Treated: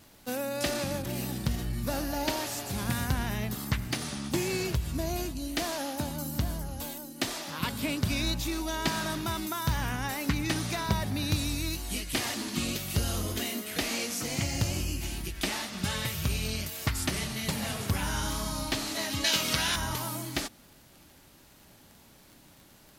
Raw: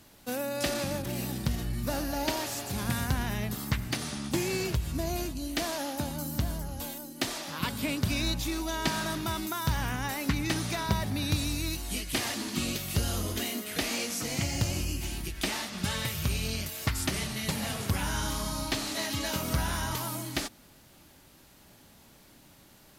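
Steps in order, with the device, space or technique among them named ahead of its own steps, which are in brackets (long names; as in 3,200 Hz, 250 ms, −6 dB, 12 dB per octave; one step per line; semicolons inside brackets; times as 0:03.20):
0:19.24–0:19.76: meter weighting curve D
vinyl LP (tape wow and flutter 25 cents; surface crackle 21 per second −42 dBFS; pink noise bed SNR 44 dB)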